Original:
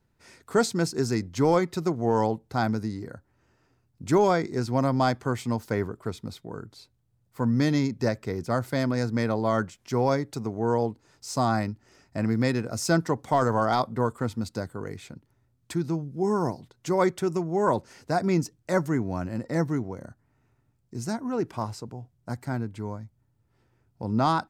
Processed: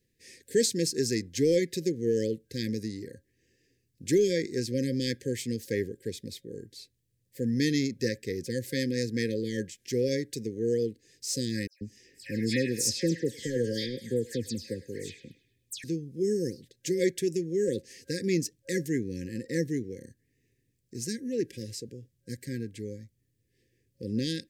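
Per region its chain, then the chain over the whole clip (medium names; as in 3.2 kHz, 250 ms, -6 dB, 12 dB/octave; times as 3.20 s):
11.67–15.84 s: phase dispersion lows, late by 142 ms, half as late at 3 kHz + band-passed feedback delay 103 ms, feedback 46%, band-pass 2.9 kHz, level -11 dB
whole clip: peaking EQ 1.1 kHz -9 dB 0.47 oct; FFT band-reject 540–1600 Hz; tone controls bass -7 dB, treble +5 dB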